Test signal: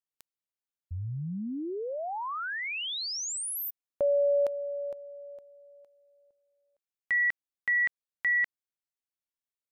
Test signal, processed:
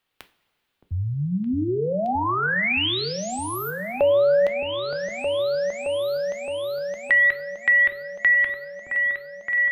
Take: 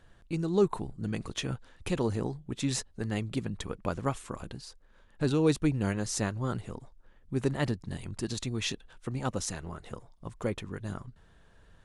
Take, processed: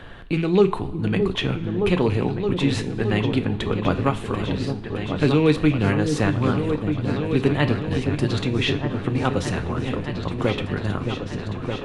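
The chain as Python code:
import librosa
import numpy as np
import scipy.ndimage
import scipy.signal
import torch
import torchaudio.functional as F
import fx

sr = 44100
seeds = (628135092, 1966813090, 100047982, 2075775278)

y = fx.rattle_buzz(x, sr, strikes_db=-31.0, level_db=-36.0)
y = fx.high_shelf_res(y, sr, hz=4600.0, db=-10.5, q=1.5)
y = fx.echo_opening(y, sr, ms=618, hz=400, octaves=2, feedback_pct=70, wet_db=-6)
y = fx.rev_double_slope(y, sr, seeds[0], early_s=0.31, late_s=1.5, knee_db=-16, drr_db=8.5)
y = fx.band_squash(y, sr, depth_pct=40)
y = y * librosa.db_to_amplitude(9.0)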